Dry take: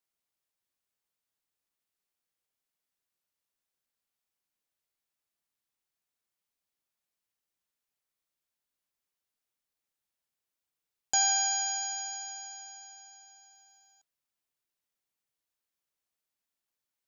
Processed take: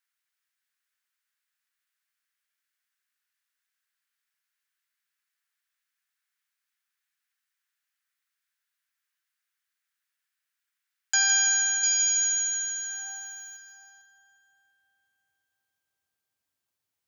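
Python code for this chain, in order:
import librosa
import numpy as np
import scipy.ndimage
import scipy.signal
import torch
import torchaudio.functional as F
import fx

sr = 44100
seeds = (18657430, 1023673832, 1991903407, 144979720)

y = fx.filter_sweep_highpass(x, sr, from_hz=1600.0, to_hz=87.0, start_s=12.82, end_s=14.0, q=3.0)
y = fx.riaa(y, sr, side='recording', at=(11.83, 13.57))
y = fx.echo_split(y, sr, split_hz=2800.0, low_ms=351, high_ms=163, feedback_pct=52, wet_db=-8.5)
y = y * 10.0 ** (2.0 / 20.0)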